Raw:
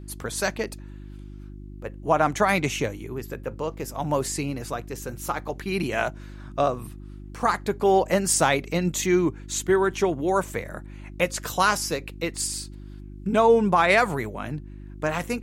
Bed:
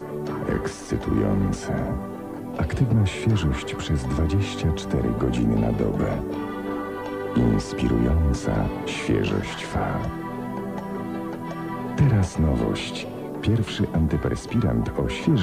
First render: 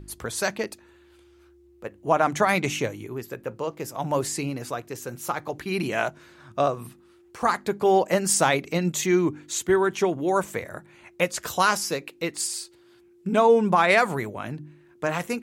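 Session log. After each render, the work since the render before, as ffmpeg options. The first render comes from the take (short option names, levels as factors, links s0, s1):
-af "bandreject=f=50:t=h:w=4,bandreject=f=100:t=h:w=4,bandreject=f=150:t=h:w=4,bandreject=f=200:t=h:w=4,bandreject=f=250:t=h:w=4,bandreject=f=300:t=h:w=4"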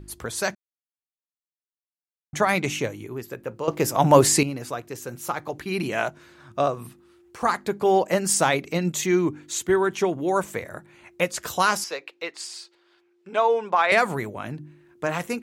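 -filter_complex "[0:a]asettb=1/sr,asplit=3[s0][s1][s2];[s0]atrim=end=11.844[s3];[s1]atrim=start=11.84:end=13.92,asetpts=PTS-STARTPTS,afade=t=in:d=0.004:c=qsin,afade=t=out:st=2.076:d=0.004:c=qsin,acrossover=split=430 5700:gain=0.0708 1 0.141[s4][s5][s6];[s4][s5][s6]amix=inputs=3:normalize=0[s7];[s2]atrim=start=13.916[s8];[s3][s7]acrossfade=d=0.004:c1=hsin:c2=qsin[s9];[s9][s8]acrossfade=d=0.004:c1=qsin:c2=hsin,asplit=5[s10][s11][s12][s13][s14];[s10]atrim=end=0.55,asetpts=PTS-STARTPTS,afade=t=out:st=0.546:d=0.004:c=hsin[s15];[s11]atrim=start=0.55:end=2.33,asetpts=PTS-STARTPTS,volume=0[s16];[s12]atrim=start=2.33:end=3.682,asetpts=PTS-STARTPTS,afade=t=in:d=0.004:c=hsin[s17];[s13]atrim=start=3.678:end=4.432,asetpts=PTS-STARTPTS,volume=3.35[s18];[s14]atrim=start=4.428[s19];[s15][s16][s17]concat=n=3:v=0:a=1[s20];[s20][s18]acrossfade=d=0.004:c1=hsin:c2=hsin[s21];[s21][s19]acrossfade=d=0.004:c1=hsin:c2=hsin"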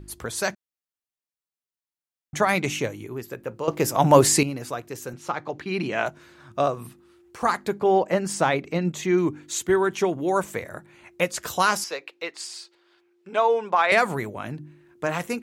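-filter_complex "[0:a]asettb=1/sr,asplit=3[s0][s1][s2];[s0]atrim=end=5.134[s3];[s1]atrim=start=5.13:end=6.06,asetpts=PTS-STARTPTS,afade=t=in:d=0.004:c=qsin,afade=t=out:st=0.926:d=0.004:c=qsin,highpass=100,lowpass=5100[s4];[s2]atrim=start=6.056[s5];[s3][s4]acrossfade=d=0.004:c1=hsin:c2=qsin[s6];[s6][s5]acrossfade=d=0.004:c1=qsin:c2=hsin,asettb=1/sr,asplit=3[s7][s8][s9];[s7]atrim=end=7.794[s10];[s8]atrim=start=7.79:end=9.18,asetpts=PTS-STARTPTS,afade=t=in:d=0.004:c=qsin,afade=t=out:st=1.386:d=0.004:c=qsin,lowpass=f=2500:p=1[s11];[s9]atrim=start=9.176[s12];[s10][s11]acrossfade=d=0.004:c1=hsin:c2=qsin[s13];[s13][s12]acrossfade=d=0.004:c1=qsin:c2=hsin"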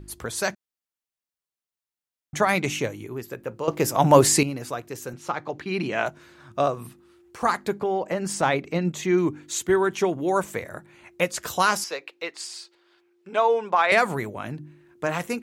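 -filter_complex "[0:a]asettb=1/sr,asplit=3[s0][s1][s2];[s0]atrim=end=7.824[s3];[s1]atrim=start=7.82:end=8.43,asetpts=PTS-STARTPTS,afade=t=in:d=0.004:c=qsin,afade=t=out:st=0.606:d=0.004:c=qsin,acompressor=threshold=0.0794:ratio=3:attack=3.2:release=140:knee=1:detection=peak[s4];[s2]atrim=start=8.426[s5];[s3][s4]acrossfade=d=0.004:c1=hsin:c2=qsin[s6];[s6][s5]acrossfade=d=0.004:c1=qsin:c2=hsin"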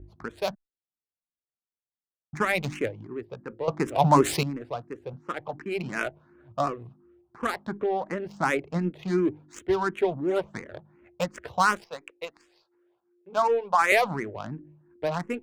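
-filter_complex "[0:a]adynamicsmooth=sensitivity=3:basefreq=820,asplit=2[s0][s1];[s1]afreqshift=2.8[s2];[s0][s2]amix=inputs=2:normalize=1"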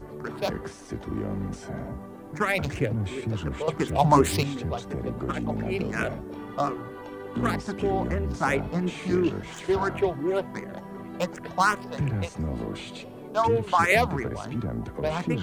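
-filter_complex "[1:a]volume=0.355[s0];[0:a][s0]amix=inputs=2:normalize=0"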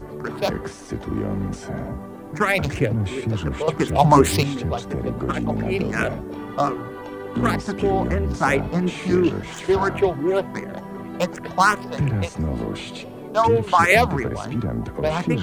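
-af "volume=1.88,alimiter=limit=0.891:level=0:latency=1"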